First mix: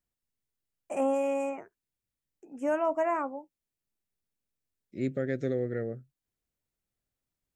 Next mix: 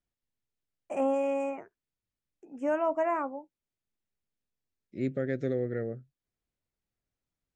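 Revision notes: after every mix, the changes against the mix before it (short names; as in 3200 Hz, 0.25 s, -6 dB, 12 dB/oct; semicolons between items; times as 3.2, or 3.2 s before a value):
master: add air absorption 68 m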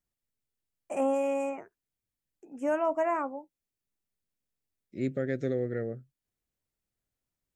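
master: remove air absorption 68 m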